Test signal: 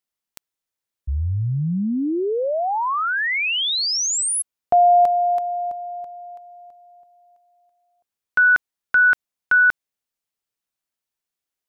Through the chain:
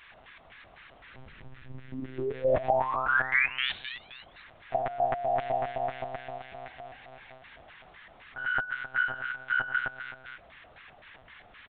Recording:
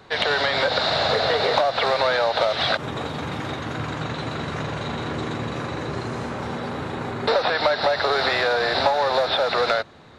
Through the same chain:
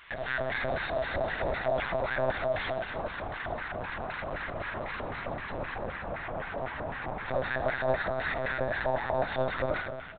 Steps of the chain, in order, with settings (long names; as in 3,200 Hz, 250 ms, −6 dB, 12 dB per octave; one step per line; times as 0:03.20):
stylus tracing distortion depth 0.032 ms
automatic gain control gain up to 4 dB
bit-depth reduction 6 bits, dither triangular
brickwall limiter −14.5 dBFS
on a send: reverse bouncing-ball delay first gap 80 ms, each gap 1.25×, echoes 5
on the sum: auto-filter band-pass square 3.9 Hz 640–1,800 Hz
one-pitch LPC vocoder at 8 kHz 130 Hz
level −4 dB